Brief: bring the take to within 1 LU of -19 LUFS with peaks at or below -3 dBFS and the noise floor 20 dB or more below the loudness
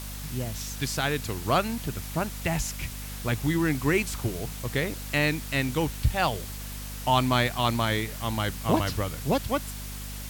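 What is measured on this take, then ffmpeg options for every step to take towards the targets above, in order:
hum 50 Hz; harmonics up to 250 Hz; hum level -36 dBFS; noise floor -37 dBFS; noise floor target -48 dBFS; loudness -28.0 LUFS; peak -8.0 dBFS; loudness target -19.0 LUFS
-> -af "bandreject=f=50:t=h:w=6,bandreject=f=100:t=h:w=6,bandreject=f=150:t=h:w=6,bandreject=f=200:t=h:w=6,bandreject=f=250:t=h:w=6"
-af "afftdn=nr=11:nf=-37"
-af "volume=9dB,alimiter=limit=-3dB:level=0:latency=1"

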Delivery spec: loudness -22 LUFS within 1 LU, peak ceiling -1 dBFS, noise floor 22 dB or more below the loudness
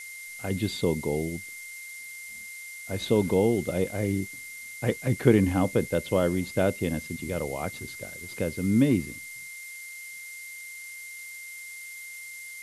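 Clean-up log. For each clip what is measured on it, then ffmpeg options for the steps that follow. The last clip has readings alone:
steady tone 2100 Hz; tone level -40 dBFS; noise floor -42 dBFS; noise floor target -51 dBFS; loudness -29.0 LUFS; peak -5.0 dBFS; loudness target -22.0 LUFS
-> -af "bandreject=f=2.1k:w=30"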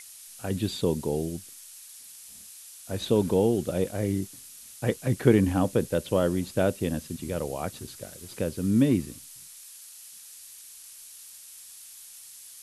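steady tone none; noise floor -47 dBFS; noise floor target -49 dBFS
-> -af "afftdn=nr=6:nf=-47"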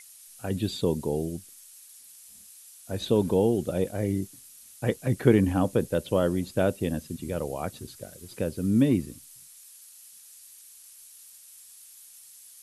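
noise floor -51 dBFS; loudness -27.0 LUFS; peak -5.0 dBFS; loudness target -22.0 LUFS
-> -af "volume=5dB,alimiter=limit=-1dB:level=0:latency=1"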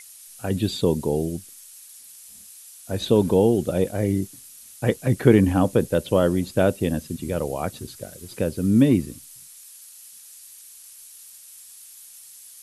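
loudness -22.0 LUFS; peak -1.0 dBFS; noise floor -46 dBFS

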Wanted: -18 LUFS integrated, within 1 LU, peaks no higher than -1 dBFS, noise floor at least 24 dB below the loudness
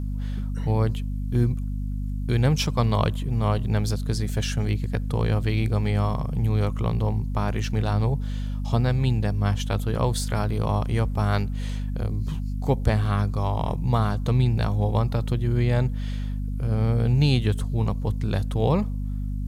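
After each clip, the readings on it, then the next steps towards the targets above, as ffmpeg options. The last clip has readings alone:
hum 50 Hz; harmonics up to 250 Hz; hum level -25 dBFS; loudness -25.0 LUFS; peak -7.0 dBFS; loudness target -18.0 LUFS
-> -af "bandreject=f=50:t=h:w=6,bandreject=f=100:t=h:w=6,bandreject=f=150:t=h:w=6,bandreject=f=200:t=h:w=6,bandreject=f=250:t=h:w=6"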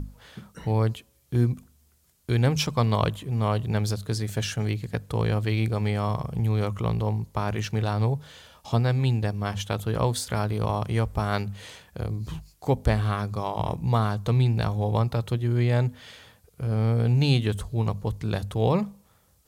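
hum none; loudness -26.5 LUFS; peak -8.0 dBFS; loudness target -18.0 LUFS
-> -af "volume=8.5dB,alimiter=limit=-1dB:level=0:latency=1"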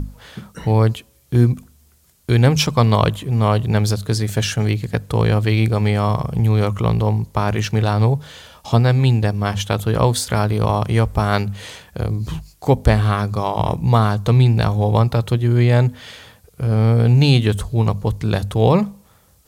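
loudness -18.0 LUFS; peak -1.0 dBFS; noise floor -54 dBFS

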